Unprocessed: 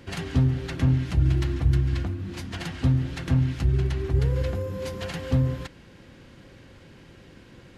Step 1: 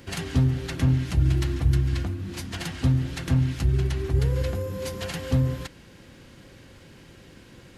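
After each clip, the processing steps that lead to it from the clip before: high shelf 6100 Hz +10 dB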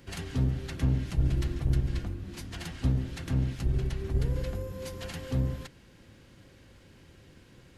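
octaver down 1 oct, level -2 dB; gain -7.5 dB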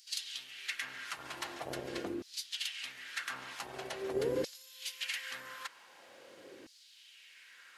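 LFO high-pass saw down 0.45 Hz 330–5100 Hz; gain +2.5 dB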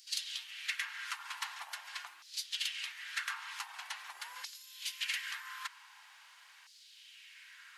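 elliptic high-pass 910 Hz, stop band 50 dB; gain +2 dB

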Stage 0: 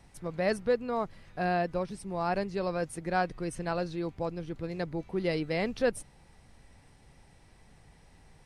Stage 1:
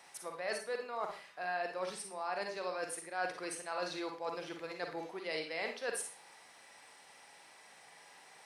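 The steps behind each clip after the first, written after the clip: HPF 710 Hz 12 dB/oct; reverse; compressor 5:1, threshold -43 dBFS, peak gain reduction 16 dB; reverse; Schroeder reverb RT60 0.35 s, DRR 3.5 dB; gain +6 dB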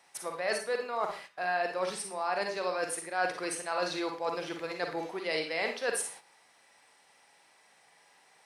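gate -53 dBFS, range -11 dB; gain +6.5 dB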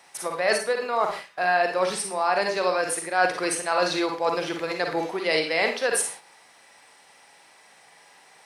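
ending taper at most 160 dB/s; gain +9 dB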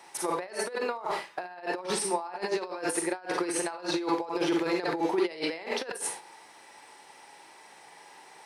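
negative-ratio compressor -29 dBFS, ratio -0.5; small resonant body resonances 350/880 Hz, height 9 dB, ringing for 25 ms; gain -5 dB

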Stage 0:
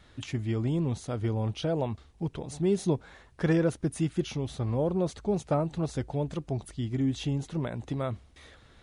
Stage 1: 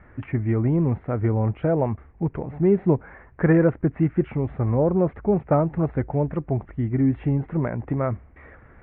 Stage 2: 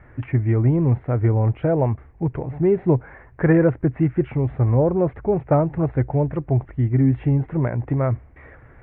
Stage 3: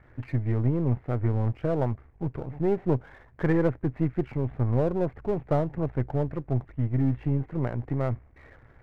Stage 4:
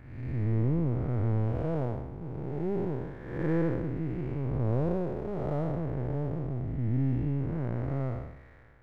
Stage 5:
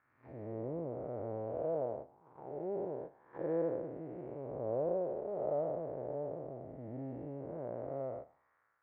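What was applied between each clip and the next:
steep low-pass 2200 Hz 48 dB/oct; gain +7.5 dB
thirty-one-band EQ 125 Hz +6 dB, 200 Hz -7 dB, 1250 Hz -3 dB; gain +2 dB
half-wave gain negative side -7 dB; gain -5 dB
time blur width 0.318 s
gate -35 dBFS, range -11 dB; auto-wah 590–1300 Hz, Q 3.2, down, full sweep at -30.5 dBFS; gain +3 dB

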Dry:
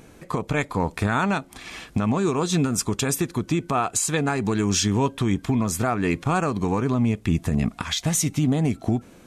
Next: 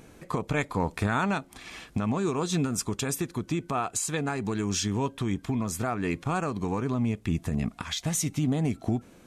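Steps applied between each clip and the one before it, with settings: vocal rider within 4 dB 2 s; gain -6 dB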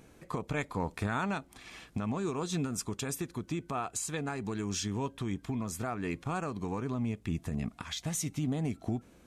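hum 60 Hz, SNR 32 dB; gain -6 dB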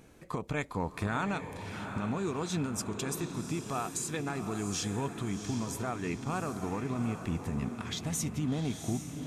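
diffused feedback echo 0.751 s, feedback 45%, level -7.5 dB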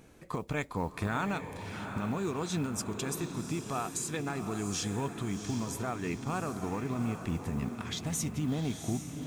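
modulation noise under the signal 32 dB

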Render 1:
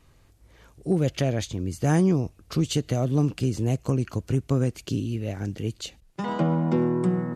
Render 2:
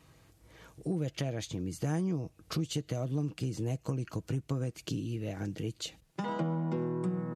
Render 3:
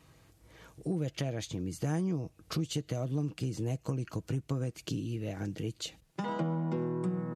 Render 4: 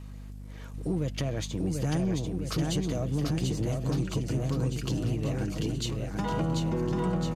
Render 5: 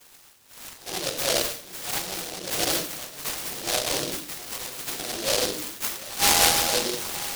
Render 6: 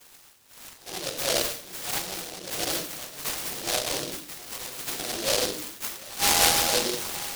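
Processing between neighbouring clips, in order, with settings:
HPF 70 Hz; comb 6.3 ms, depth 35%; compressor 2.5:1, threshold -35 dBFS, peak gain reduction 13.5 dB
nothing audible
hum 50 Hz, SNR 11 dB; bouncing-ball echo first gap 0.74 s, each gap 0.9×, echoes 5; sample leveller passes 1
LFO high-pass saw down 0.73 Hz 510–2000 Hz; shoebox room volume 380 m³, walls furnished, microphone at 6.8 m; noise-modulated delay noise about 4200 Hz, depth 0.29 ms; gain -2 dB
tremolo 0.59 Hz, depth 39%

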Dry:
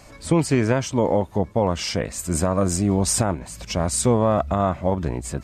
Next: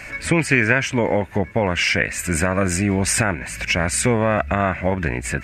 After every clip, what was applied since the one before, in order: band shelf 2000 Hz +16 dB 1.1 oct; compressor 1.5:1, threshold -28 dBFS, peak gain reduction 6.5 dB; gain +5 dB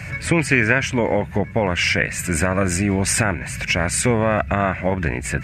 band noise 67–170 Hz -34 dBFS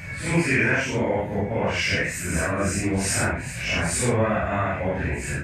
phase scrambler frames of 0.2 s; gain -4 dB

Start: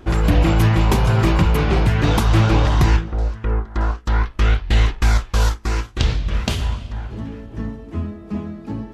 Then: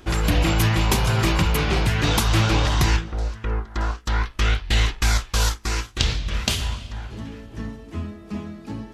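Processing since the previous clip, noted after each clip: high shelf 2000 Hz +11.5 dB; gain -5 dB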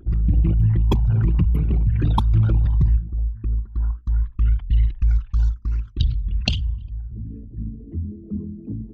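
formant sharpening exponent 3; gain +2.5 dB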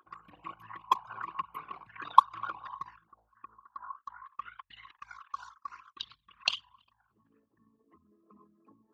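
resonant high-pass 1100 Hz, resonance Q 13; gain -5.5 dB

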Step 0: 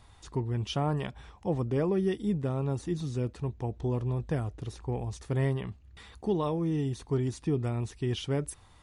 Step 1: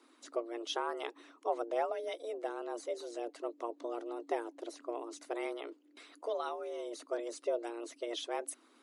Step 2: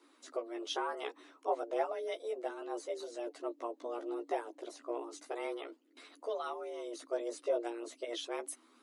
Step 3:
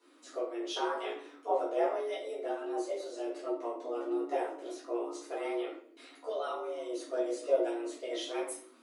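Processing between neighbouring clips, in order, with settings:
frequency shift +230 Hz; harmonic-percussive split harmonic -11 dB; gain -1.5 dB
chorus voices 2, 0.33 Hz, delay 14 ms, depth 2.7 ms; gain +2.5 dB
shoebox room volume 71 m³, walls mixed, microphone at 1.8 m; gain -5.5 dB

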